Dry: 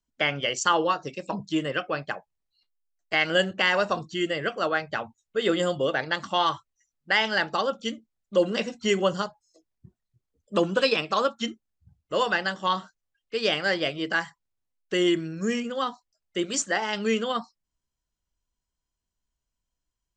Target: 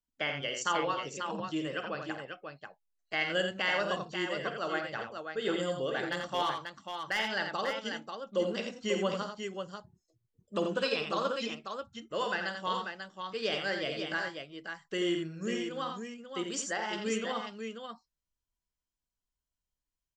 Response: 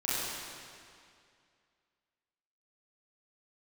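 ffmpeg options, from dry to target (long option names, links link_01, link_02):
-filter_complex "[0:a]asplit=3[link_01][link_02][link_03];[link_01]afade=type=out:start_time=6:duration=0.02[link_04];[link_02]volume=14.5dB,asoftclip=hard,volume=-14.5dB,afade=type=in:start_time=6:duration=0.02,afade=type=out:start_time=7.18:duration=0.02[link_05];[link_03]afade=type=in:start_time=7.18:duration=0.02[link_06];[link_04][link_05][link_06]amix=inputs=3:normalize=0,aecho=1:1:51|86|540:0.299|0.473|0.473,volume=-9dB"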